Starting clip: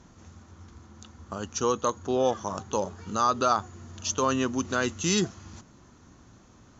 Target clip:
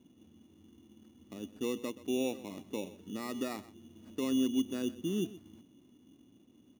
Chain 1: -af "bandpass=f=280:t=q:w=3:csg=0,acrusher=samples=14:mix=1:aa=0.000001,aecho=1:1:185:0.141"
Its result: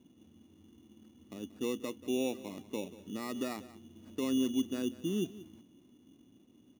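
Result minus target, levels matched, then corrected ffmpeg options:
echo 59 ms late
-af "bandpass=f=280:t=q:w=3:csg=0,acrusher=samples=14:mix=1:aa=0.000001,aecho=1:1:126:0.141"

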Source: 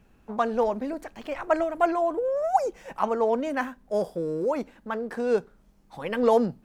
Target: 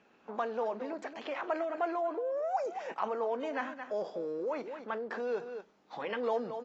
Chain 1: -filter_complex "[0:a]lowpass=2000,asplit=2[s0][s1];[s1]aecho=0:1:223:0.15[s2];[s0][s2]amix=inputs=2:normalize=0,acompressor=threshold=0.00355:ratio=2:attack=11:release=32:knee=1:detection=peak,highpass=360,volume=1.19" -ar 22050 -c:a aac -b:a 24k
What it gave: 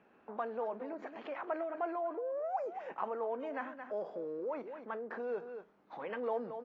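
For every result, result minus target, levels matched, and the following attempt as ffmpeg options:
4 kHz band -7.5 dB; compression: peak gain reduction +3.5 dB
-filter_complex "[0:a]lowpass=5000,asplit=2[s0][s1];[s1]aecho=0:1:223:0.15[s2];[s0][s2]amix=inputs=2:normalize=0,acompressor=threshold=0.00355:ratio=2:attack=11:release=32:knee=1:detection=peak,highpass=360,volume=1.19" -ar 22050 -c:a aac -b:a 24k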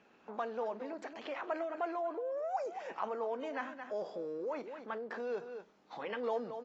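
compression: peak gain reduction +3.5 dB
-filter_complex "[0:a]lowpass=5000,asplit=2[s0][s1];[s1]aecho=0:1:223:0.15[s2];[s0][s2]amix=inputs=2:normalize=0,acompressor=threshold=0.00841:ratio=2:attack=11:release=32:knee=1:detection=peak,highpass=360,volume=1.19" -ar 22050 -c:a aac -b:a 24k

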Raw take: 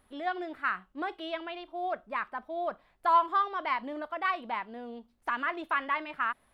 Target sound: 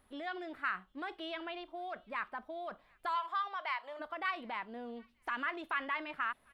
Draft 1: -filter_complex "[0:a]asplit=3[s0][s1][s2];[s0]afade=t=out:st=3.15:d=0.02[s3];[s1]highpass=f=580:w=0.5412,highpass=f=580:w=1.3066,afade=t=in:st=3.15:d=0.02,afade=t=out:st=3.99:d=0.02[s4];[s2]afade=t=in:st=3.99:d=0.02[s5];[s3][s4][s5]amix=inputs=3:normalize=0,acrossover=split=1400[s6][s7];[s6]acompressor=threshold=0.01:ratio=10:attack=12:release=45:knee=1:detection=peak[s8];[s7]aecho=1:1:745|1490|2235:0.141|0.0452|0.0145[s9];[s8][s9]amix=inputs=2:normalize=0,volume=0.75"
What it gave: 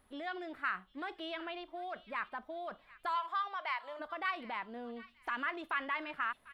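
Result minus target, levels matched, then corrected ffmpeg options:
echo-to-direct +11 dB
-filter_complex "[0:a]asplit=3[s0][s1][s2];[s0]afade=t=out:st=3.15:d=0.02[s3];[s1]highpass=f=580:w=0.5412,highpass=f=580:w=1.3066,afade=t=in:st=3.15:d=0.02,afade=t=out:st=3.99:d=0.02[s4];[s2]afade=t=in:st=3.99:d=0.02[s5];[s3][s4][s5]amix=inputs=3:normalize=0,acrossover=split=1400[s6][s7];[s6]acompressor=threshold=0.01:ratio=10:attack=12:release=45:knee=1:detection=peak[s8];[s7]aecho=1:1:745|1490:0.0398|0.0127[s9];[s8][s9]amix=inputs=2:normalize=0,volume=0.75"

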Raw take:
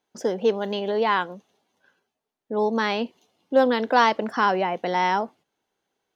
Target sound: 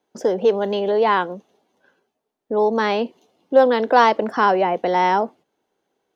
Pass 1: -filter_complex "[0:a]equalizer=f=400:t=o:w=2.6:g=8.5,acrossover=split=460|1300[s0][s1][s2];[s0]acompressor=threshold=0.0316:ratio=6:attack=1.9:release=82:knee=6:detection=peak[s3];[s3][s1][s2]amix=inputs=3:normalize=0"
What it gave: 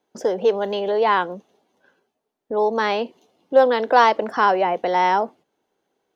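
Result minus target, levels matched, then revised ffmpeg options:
compression: peak gain reduction +6.5 dB
-filter_complex "[0:a]equalizer=f=400:t=o:w=2.6:g=8.5,acrossover=split=460|1300[s0][s1][s2];[s0]acompressor=threshold=0.0794:ratio=6:attack=1.9:release=82:knee=6:detection=peak[s3];[s3][s1][s2]amix=inputs=3:normalize=0"

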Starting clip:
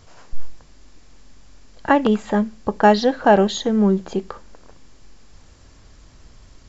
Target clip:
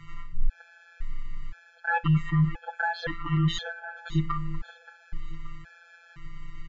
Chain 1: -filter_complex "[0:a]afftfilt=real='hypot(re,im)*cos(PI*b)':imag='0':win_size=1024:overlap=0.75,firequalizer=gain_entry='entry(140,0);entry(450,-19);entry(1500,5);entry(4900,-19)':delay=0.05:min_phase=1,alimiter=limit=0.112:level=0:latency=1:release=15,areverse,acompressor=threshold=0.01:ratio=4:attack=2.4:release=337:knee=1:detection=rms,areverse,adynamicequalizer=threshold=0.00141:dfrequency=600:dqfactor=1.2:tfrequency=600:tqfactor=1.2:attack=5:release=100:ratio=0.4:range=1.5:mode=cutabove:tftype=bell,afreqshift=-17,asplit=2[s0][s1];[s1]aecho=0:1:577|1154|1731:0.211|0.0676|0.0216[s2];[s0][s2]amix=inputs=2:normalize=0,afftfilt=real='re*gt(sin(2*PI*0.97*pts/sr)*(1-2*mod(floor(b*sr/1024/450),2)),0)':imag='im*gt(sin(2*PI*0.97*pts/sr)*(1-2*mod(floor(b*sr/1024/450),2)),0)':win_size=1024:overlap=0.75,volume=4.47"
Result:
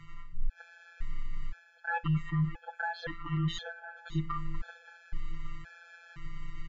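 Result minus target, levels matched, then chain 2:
compression: peak gain reduction +7 dB
-filter_complex "[0:a]afftfilt=real='hypot(re,im)*cos(PI*b)':imag='0':win_size=1024:overlap=0.75,firequalizer=gain_entry='entry(140,0);entry(450,-19);entry(1500,5);entry(4900,-19)':delay=0.05:min_phase=1,alimiter=limit=0.112:level=0:latency=1:release=15,areverse,acompressor=threshold=0.0282:ratio=4:attack=2.4:release=337:knee=1:detection=rms,areverse,adynamicequalizer=threshold=0.00141:dfrequency=600:dqfactor=1.2:tfrequency=600:tqfactor=1.2:attack=5:release=100:ratio=0.4:range=1.5:mode=cutabove:tftype=bell,afreqshift=-17,asplit=2[s0][s1];[s1]aecho=0:1:577|1154|1731:0.211|0.0676|0.0216[s2];[s0][s2]amix=inputs=2:normalize=0,afftfilt=real='re*gt(sin(2*PI*0.97*pts/sr)*(1-2*mod(floor(b*sr/1024/450),2)),0)':imag='im*gt(sin(2*PI*0.97*pts/sr)*(1-2*mod(floor(b*sr/1024/450),2)),0)':win_size=1024:overlap=0.75,volume=4.47"

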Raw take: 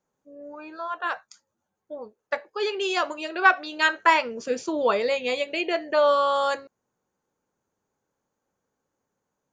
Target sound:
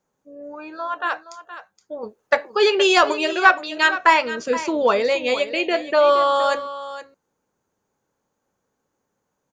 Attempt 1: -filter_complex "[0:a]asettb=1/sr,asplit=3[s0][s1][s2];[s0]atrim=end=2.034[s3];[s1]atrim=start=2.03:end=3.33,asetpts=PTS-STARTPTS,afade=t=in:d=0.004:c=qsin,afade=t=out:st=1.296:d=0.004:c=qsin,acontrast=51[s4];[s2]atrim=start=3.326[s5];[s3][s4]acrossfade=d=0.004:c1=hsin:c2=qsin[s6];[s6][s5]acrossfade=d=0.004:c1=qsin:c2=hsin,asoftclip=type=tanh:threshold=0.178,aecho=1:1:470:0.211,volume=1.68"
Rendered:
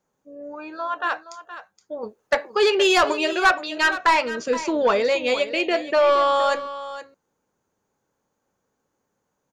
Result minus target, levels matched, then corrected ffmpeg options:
saturation: distortion +15 dB
-filter_complex "[0:a]asettb=1/sr,asplit=3[s0][s1][s2];[s0]atrim=end=2.034[s3];[s1]atrim=start=2.03:end=3.33,asetpts=PTS-STARTPTS,afade=t=in:d=0.004:c=qsin,afade=t=out:st=1.296:d=0.004:c=qsin,acontrast=51[s4];[s2]atrim=start=3.326[s5];[s3][s4]acrossfade=d=0.004:c1=hsin:c2=qsin[s6];[s6][s5]acrossfade=d=0.004:c1=qsin:c2=hsin,asoftclip=type=tanh:threshold=0.631,aecho=1:1:470:0.211,volume=1.68"

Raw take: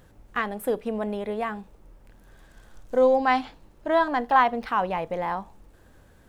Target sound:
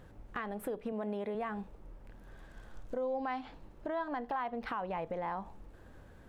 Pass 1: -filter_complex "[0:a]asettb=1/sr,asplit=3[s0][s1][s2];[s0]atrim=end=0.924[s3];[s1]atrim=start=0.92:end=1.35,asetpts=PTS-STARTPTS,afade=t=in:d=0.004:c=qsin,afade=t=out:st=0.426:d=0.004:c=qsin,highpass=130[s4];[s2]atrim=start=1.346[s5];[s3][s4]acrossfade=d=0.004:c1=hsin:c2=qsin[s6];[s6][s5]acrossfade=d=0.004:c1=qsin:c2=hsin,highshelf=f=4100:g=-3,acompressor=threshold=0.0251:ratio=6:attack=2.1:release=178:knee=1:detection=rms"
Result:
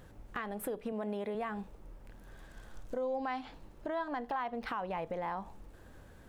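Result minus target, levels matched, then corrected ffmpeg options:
8 kHz band +6.5 dB
-filter_complex "[0:a]asettb=1/sr,asplit=3[s0][s1][s2];[s0]atrim=end=0.924[s3];[s1]atrim=start=0.92:end=1.35,asetpts=PTS-STARTPTS,afade=t=in:d=0.004:c=qsin,afade=t=out:st=0.426:d=0.004:c=qsin,highpass=130[s4];[s2]atrim=start=1.346[s5];[s3][s4]acrossfade=d=0.004:c1=hsin:c2=qsin[s6];[s6][s5]acrossfade=d=0.004:c1=qsin:c2=hsin,highshelf=f=4100:g=-10.5,acompressor=threshold=0.0251:ratio=6:attack=2.1:release=178:knee=1:detection=rms"

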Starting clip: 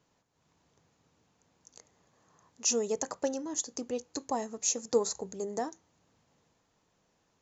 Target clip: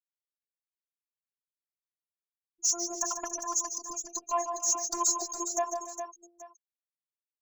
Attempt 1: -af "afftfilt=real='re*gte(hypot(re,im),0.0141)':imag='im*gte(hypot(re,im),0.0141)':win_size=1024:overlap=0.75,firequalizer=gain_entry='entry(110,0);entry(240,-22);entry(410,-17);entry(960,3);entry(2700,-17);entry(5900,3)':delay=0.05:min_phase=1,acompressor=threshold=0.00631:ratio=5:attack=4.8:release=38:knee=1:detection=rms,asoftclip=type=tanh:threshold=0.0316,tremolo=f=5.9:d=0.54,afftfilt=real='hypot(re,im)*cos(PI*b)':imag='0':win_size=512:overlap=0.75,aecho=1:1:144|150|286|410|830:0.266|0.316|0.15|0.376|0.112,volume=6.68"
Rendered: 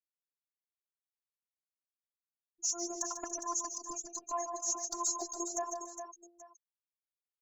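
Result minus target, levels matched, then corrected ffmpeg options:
compression: peak gain reduction +8.5 dB
-af "afftfilt=real='re*gte(hypot(re,im),0.0141)':imag='im*gte(hypot(re,im),0.0141)':win_size=1024:overlap=0.75,firequalizer=gain_entry='entry(110,0);entry(240,-22);entry(410,-17);entry(960,3);entry(2700,-17);entry(5900,3)':delay=0.05:min_phase=1,acompressor=threshold=0.0211:ratio=5:attack=4.8:release=38:knee=1:detection=rms,asoftclip=type=tanh:threshold=0.0316,tremolo=f=5.9:d=0.54,afftfilt=real='hypot(re,im)*cos(PI*b)':imag='0':win_size=512:overlap=0.75,aecho=1:1:144|150|286|410|830:0.266|0.316|0.15|0.376|0.112,volume=6.68"

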